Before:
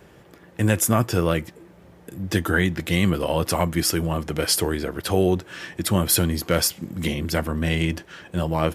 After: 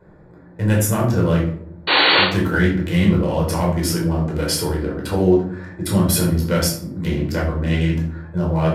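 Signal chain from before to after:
adaptive Wiener filter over 15 samples
sound drawn into the spectrogram noise, 0:01.87–0:02.24, 280–4,600 Hz −15 dBFS
rectangular room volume 680 cubic metres, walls furnished, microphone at 4.8 metres
level −5 dB

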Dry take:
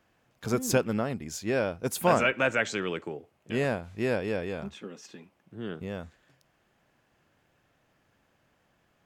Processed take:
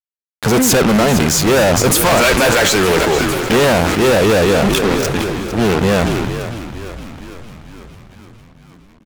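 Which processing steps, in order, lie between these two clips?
parametric band 820 Hz +4.5 dB 1.3 octaves
automatic gain control gain up to 10.5 dB
fuzz pedal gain 34 dB, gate −34 dBFS
on a send: echo with shifted repeats 456 ms, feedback 65%, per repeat −57 Hz, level −12 dB
on the sum: boost into a limiter +8 dB
level that may fall only so fast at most 21 dB per second
level −5 dB

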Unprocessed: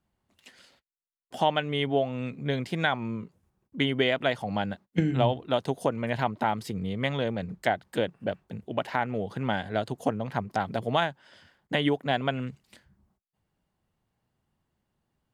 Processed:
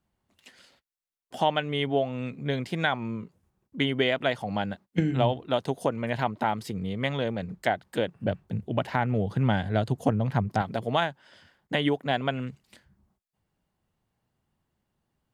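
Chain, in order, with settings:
0:08.15–0:10.62: parametric band 99 Hz +10.5 dB 2.2 octaves

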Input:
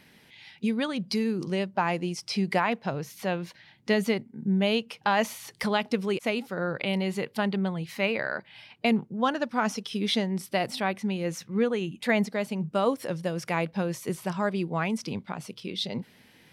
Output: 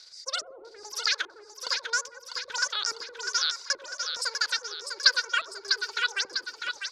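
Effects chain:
change of speed 2.39×
drawn EQ curve 100 Hz 0 dB, 190 Hz −25 dB, 4,200 Hz +5 dB
auto-filter low-pass square 1.2 Hz 340–4,800 Hz
in parallel at +2.5 dB: output level in coarse steps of 17 dB
on the sum: parametric band 1,500 Hz +13.5 dB 0.26 octaves
mains-hum notches 60/120/180 Hz
on a send: echo with a time of its own for lows and highs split 860 Hz, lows 88 ms, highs 649 ms, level −6 dB
on the sum: level −7 dB

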